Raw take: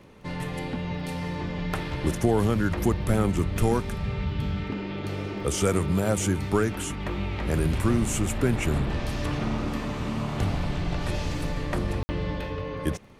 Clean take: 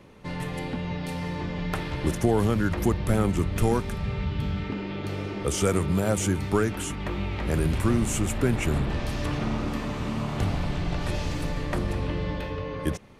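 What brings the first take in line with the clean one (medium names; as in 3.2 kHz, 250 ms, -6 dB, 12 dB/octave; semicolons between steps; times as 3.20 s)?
de-click; room tone fill 12.03–12.09 s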